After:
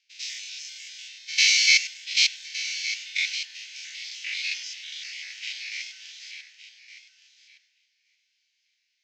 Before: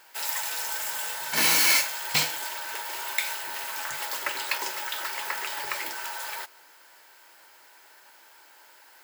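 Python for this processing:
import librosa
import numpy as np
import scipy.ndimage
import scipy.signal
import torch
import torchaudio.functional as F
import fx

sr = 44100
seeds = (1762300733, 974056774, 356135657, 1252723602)

p1 = fx.spec_steps(x, sr, hold_ms=100)
p2 = fx.dereverb_blind(p1, sr, rt60_s=1.1)
p3 = fx.rider(p2, sr, range_db=4, speed_s=0.5)
p4 = p2 + (p3 * 10.0 ** (0.5 / 20.0))
p5 = scipy.signal.sosfilt(scipy.signal.ellip(3, 1.0, 40, [2200.0, 6200.0], 'bandpass', fs=sr, output='sos'), p4)
p6 = p5 + fx.echo_feedback(p5, sr, ms=1165, feedback_pct=17, wet_db=-7.5, dry=0)
y = fx.band_widen(p6, sr, depth_pct=70)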